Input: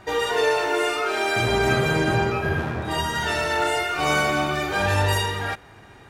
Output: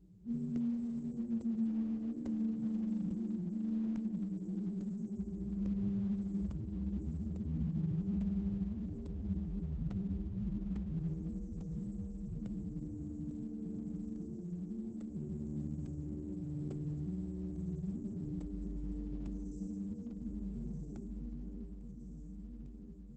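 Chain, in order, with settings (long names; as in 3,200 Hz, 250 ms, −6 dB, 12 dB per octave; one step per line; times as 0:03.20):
mains-hum notches 60/120/180/240 Hz
wrong playback speed 15 ips tape played at 7.5 ips
on a send: delay that swaps between a low-pass and a high-pass 335 ms, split 820 Hz, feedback 72%, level −6.5 dB
on the sum: downward compressor 10 to 1, threshold −22 dBFS, peak gain reduction 7.5 dB
high-shelf EQ 7,700 Hz +2 dB
phase-vocoder stretch with locked phases 1.9×
inverse Chebyshev band-stop filter 970–4,100 Hz, stop band 80 dB
RIAA equalisation recording
regular buffer underruns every 0.85 s, samples 64, zero, from 0:00.56
level +4.5 dB
Opus 10 kbit/s 48,000 Hz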